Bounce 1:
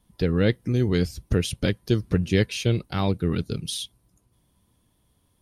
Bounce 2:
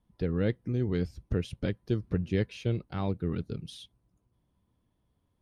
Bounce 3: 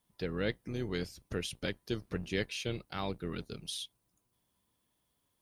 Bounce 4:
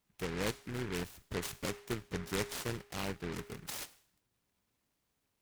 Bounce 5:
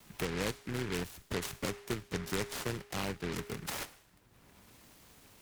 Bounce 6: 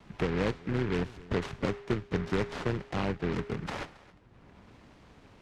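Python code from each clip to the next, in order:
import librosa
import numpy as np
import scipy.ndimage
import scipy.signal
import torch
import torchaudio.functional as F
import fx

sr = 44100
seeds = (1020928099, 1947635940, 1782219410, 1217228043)

y1 = fx.lowpass(x, sr, hz=1600.0, slope=6)
y1 = F.gain(torch.from_numpy(y1), -7.0).numpy()
y2 = fx.octave_divider(y1, sr, octaves=2, level_db=-4.0)
y2 = fx.tilt_eq(y2, sr, slope=3.5)
y3 = fx.comb_fb(y2, sr, f0_hz=410.0, decay_s=0.61, harmonics='all', damping=0.0, mix_pct=70)
y3 = fx.noise_mod_delay(y3, sr, seeds[0], noise_hz=1500.0, depth_ms=0.19)
y3 = F.gain(torch.from_numpy(y3), 8.0).numpy()
y4 = fx.vibrato(y3, sr, rate_hz=0.39, depth_cents=10.0)
y4 = fx.band_squash(y4, sr, depth_pct=70)
y4 = F.gain(torch.from_numpy(y4), 1.5).numpy()
y5 = fx.spacing_loss(y4, sr, db_at_10k=27)
y5 = y5 + 10.0 ** (-20.5 / 20.0) * np.pad(y5, (int(271 * sr / 1000.0), 0))[:len(y5)]
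y5 = F.gain(torch.from_numpy(y5), 7.5).numpy()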